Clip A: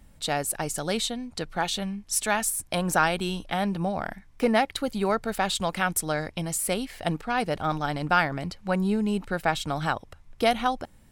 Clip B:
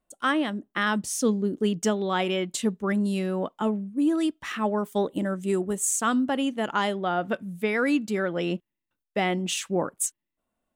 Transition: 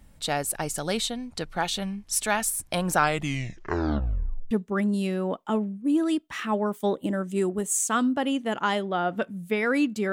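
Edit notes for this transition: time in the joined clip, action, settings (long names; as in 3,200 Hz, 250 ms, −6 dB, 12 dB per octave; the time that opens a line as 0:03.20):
clip A
0:02.95: tape stop 1.56 s
0:04.51: continue with clip B from 0:02.63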